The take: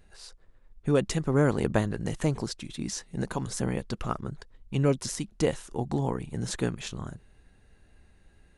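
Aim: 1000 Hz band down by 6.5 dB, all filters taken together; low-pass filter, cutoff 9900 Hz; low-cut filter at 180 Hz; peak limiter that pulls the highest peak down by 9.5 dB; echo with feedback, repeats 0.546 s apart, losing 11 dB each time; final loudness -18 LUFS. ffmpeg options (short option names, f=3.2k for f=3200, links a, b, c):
-af "highpass=180,lowpass=9.9k,equalizer=f=1k:t=o:g=-9,alimiter=limit=-22dB:level=0:latency=1,aecho=1:1:546|1092|1638:0.282|0.0789|0.0221,volume=17.5dB"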